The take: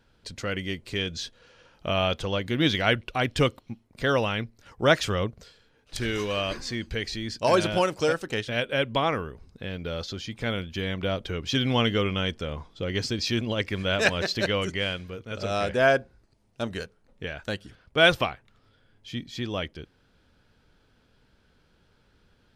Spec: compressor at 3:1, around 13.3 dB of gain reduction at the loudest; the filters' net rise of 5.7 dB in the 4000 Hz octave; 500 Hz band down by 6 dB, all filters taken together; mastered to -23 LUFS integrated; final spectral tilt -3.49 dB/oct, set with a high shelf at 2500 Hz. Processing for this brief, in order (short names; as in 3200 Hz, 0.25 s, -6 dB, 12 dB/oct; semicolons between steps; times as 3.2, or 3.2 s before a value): bell 500 Hz -8 dB; high shelf 2500 Hz +5 dB; bell 4000 Hz +3.5 dB; compressor 3:1, threshold -31 dBFS; gain +10 dB